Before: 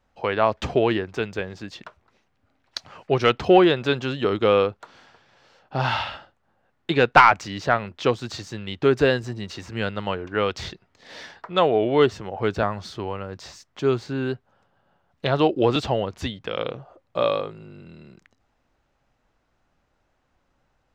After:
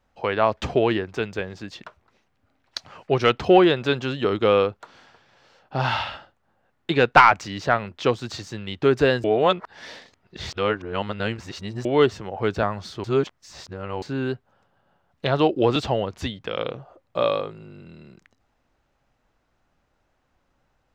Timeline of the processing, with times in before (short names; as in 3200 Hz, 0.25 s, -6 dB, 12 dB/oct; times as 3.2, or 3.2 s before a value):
9.24–11.85 reverse
13.04–14.02 reverse